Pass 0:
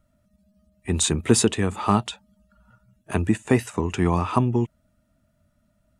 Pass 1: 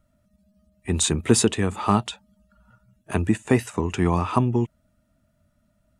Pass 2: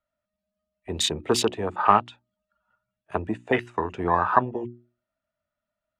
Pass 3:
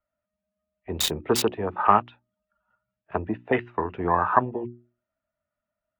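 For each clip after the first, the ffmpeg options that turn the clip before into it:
-af anull
-filter_complex "[0:a]afwtdn=0.0355,acrossover=split=510 4500:gain=0.141 1 0.126[s0][s1][s2];[s0][s1][s2]amix=inputs=3:normalize=0,bandreject=f=60:t=h:w=6,bandreject=f=120:t=h:w=6,bandreject=f=180:t=h:w=6,bandreject=f=240:t=h:w=6,bandreject=f=300:t=h:w=6,bandreject=f=360:t=h:w=6,volume=2.11"
-filter_complex "[0:a]acrossover=split=590|3200[s0][s1][s2];[s2]acrusher=bits=3:mix=0:aa=0.000001[s3];[s0][s1][s3]amix=inputs=3:normalize=0" -ar 48000 -c:a libvorbis -b:a 96k

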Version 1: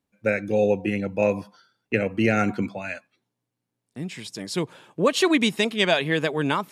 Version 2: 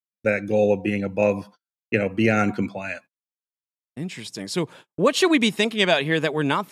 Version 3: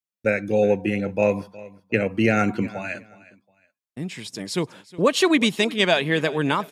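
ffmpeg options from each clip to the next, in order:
-af "agate=range=0.00708:threshold=0.00631:ratio=16:detection=peak,volume=1.19"
-af "aecho=1:1:363|726:0.1|0.028"

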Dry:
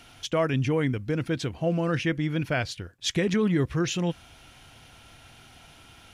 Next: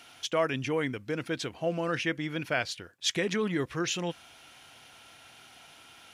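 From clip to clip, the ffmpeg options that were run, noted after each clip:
-af "highpass=f=480:p=1"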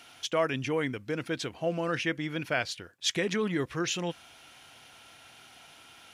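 -af anull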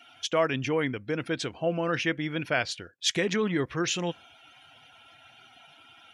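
-af "afftdn=nr=18:nf=-54,volume=1.33"

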